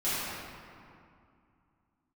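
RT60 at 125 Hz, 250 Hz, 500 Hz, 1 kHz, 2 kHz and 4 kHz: 2.9, 3.0, 2.3, 2.5, 2.0, 1.4 s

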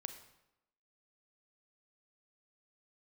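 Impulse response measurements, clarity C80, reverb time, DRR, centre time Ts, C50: 11.5 dB, 0.90 s, 7.5 dB, 14 ms, 9.5 dB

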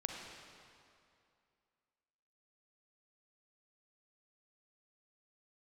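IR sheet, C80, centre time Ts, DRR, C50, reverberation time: 2.5 dB, 92 ms, 1.0 dB, 1.5 dB, 2.5 s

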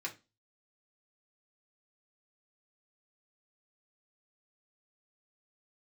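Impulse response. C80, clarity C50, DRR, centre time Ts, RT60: 23.0 dB, 15.5 dB, -1.5 dB, 11 ms, 0.25 s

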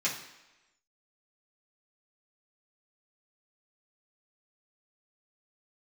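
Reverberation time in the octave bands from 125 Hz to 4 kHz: 0.75, 0.95, 1.0, 1.0, 1.1, 0.95 s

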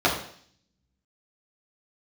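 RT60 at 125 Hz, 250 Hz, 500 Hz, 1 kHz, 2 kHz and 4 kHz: 0.90, 0.70, 0.55, 0.55, 0.60, 0.70 s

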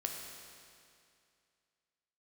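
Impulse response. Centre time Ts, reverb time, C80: 82 ms, 2.4 s, 3.5 dB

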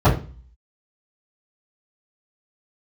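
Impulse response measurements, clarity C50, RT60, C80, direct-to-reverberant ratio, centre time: 8.5 dB, 0.35 s, 13.5 dB, -16.5 dB, 23 ms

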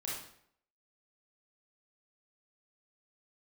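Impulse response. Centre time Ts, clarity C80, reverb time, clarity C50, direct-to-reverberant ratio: 57 ms, 5.5 dB, 0.65 s, 0.5 dB, -6.0 dB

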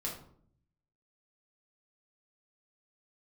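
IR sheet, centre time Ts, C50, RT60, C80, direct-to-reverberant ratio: 29 ms, 6.0 dB, 0.60 s, 10.0 dB, -4.5 dB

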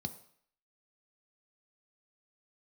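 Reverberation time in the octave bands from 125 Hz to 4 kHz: 0.50, 0.50, 0.60, 0.65, 0.65, 0.60 s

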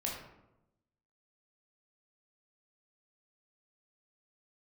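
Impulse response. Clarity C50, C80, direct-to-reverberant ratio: 3.0 dB, 6.0 dB, -3.0 dB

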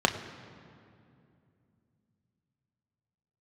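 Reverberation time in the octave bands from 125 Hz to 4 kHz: 4.1, 3.8, 2.8, 2.3, 2.1, 1.6 s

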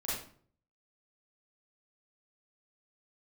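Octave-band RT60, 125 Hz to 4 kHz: 0.75, 0.60, 0.55, 0.50, 0.40, 0.35 s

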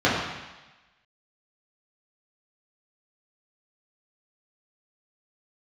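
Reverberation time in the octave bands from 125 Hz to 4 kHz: 1.1, 1.0, 1.0, 1.2, 1.2, 1.2 s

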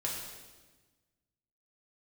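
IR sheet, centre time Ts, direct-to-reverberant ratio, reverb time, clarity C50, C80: 64 ms, -3.5 dB, 1.3 s, 2.0 dB, 4.0 dB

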